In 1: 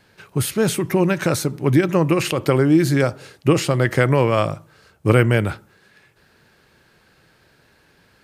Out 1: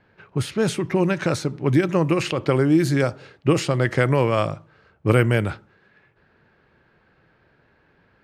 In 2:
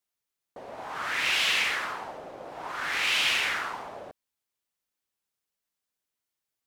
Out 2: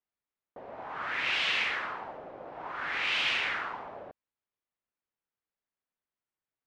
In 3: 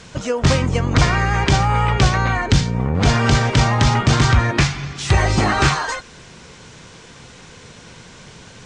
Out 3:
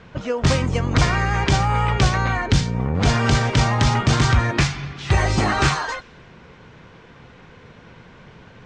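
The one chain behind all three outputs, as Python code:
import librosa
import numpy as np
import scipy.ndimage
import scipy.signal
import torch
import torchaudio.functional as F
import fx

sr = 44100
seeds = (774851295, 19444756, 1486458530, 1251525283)

y = fx.env_lowpass(x, sr, base_hz=2100.0, full_db=-10.5)
y = y * 10.0 ** (-2.5 / 20.0)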